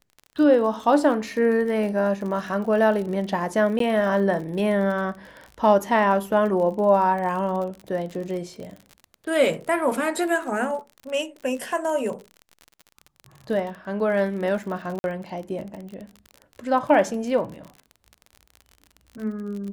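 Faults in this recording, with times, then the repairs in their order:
crackle 43 per s -32 dBFS
3.79–3.80 s: dropout 13 ms
14.99–15.04 s: dropout 51 ms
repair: de-click; interpolate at 3.79 s, 13 ms; interpolate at 14.99 s, 51 ms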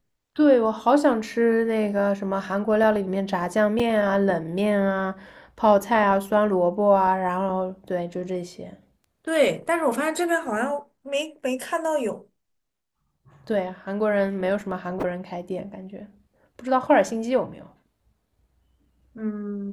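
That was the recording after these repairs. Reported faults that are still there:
nothing left

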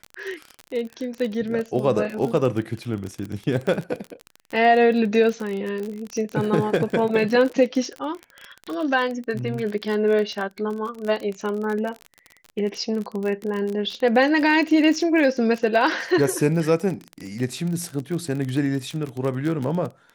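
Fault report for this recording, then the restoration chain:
crackle 32 per s -26 dBFS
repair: de-click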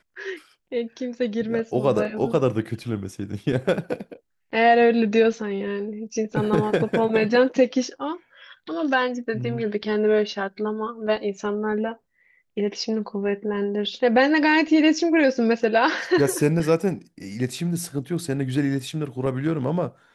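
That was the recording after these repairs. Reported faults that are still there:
nothing left

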